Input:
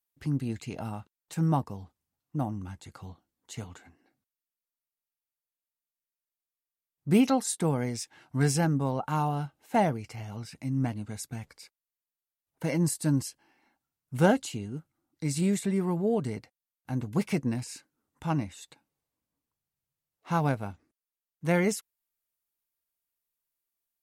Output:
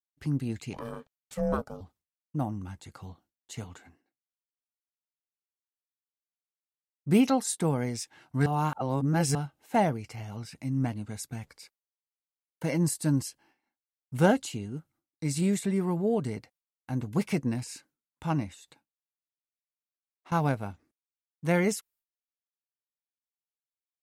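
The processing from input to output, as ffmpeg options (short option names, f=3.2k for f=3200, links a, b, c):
-filter_complex "[0:a]asettb=1/sr,asplit=3[a][b][c];[a]atrim=end=0.734[d];[b]atrim=start=0.73:end=1.81,asetpts=PTS-STARTPTS,afade=t=in:d=0.004:c=qsin,afade=t=out:st=1.076:d=0.004:c=qsin,aeval=exprs='val(0)*sin(2*PI*350*n/s)':c=same[e];[c]atrim=start=1.806[f];[d][e]acrossfade=d=0.004:c1=hsin:c2=qsin[g];[g][f]acrossfade=d=0.004:c1=qsin:c2=hsin,asettb=1/sr,asplit=3[h][i][j];[h]atrim=end=18.544[k];[i]atrim=start=18.54:end=20.32,asetpts=PTS-STARTPTS,afade=t=in:d=0.004:c=qsin,afade=t=out:st=1.776:d=0.004:c=qsin,acompressor=threshold=-49dB:ratio=6:attack=3.2:release=140:knee=1:detection=peak[l];[j]atrim=start=20.316[m];[k][l]acrossfade=d=0.004:c1=hsin:c2=qsin[n];[n][m]acrossfade=d=0.004:c1=qsin:c2=hsin,asplit=3[o][p][q];[o]atrim=end=8.462[r];[p]atrim=start=8.458:end=9.352,asetpts=PTS-STARTPTS,areverse[s];[q]atrim=start=9.348[t];[r][s]acrossfade=d=0.004:c1=hsin:c2=hsin[u];[u][t]acrossfade=d=0.004:c1=hsin:c2=hsin,agate=range=-33dB:threshold=-58dB:ratio=3:detection=peak"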